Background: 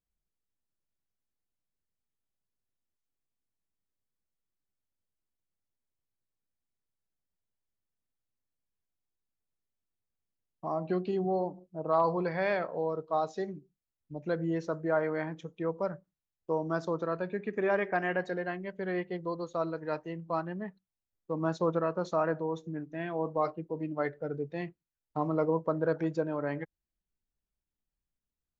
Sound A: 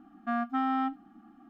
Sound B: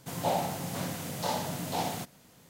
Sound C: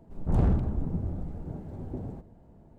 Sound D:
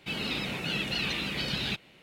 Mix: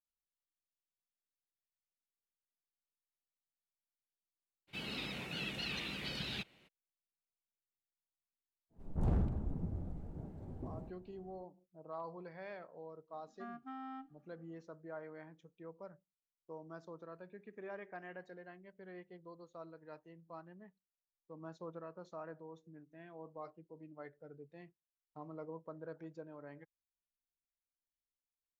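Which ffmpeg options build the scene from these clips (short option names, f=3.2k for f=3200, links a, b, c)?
-filter_complex "[0:a]volume=-18.5dB[a];[4:a]atrim=end=2.02,asetpts=PTS-STARTPTS,volume=-10dB,afade=t=in:d=0.02,afade=t=out:st=2:d=0.02,adelay=4670[b];[3:a]atrim=end=2.78,asetpts=PTS-STARTPTS,volume=-9dB,afade=t=in:d=0.1,afade=t=out:st=2.68:d=0.1,adelay=8690[c];[1:a]atrim=end=1.49,asetpts=PTS-STARTPTS,volume=-18dB,afade=t=in:d=0.004:c=hsin,afade=t=out:st=1.486:d=0.004:c=hsin,adelay=13130[d];[a][b][c][d]amix=inputs=4:normalize=0"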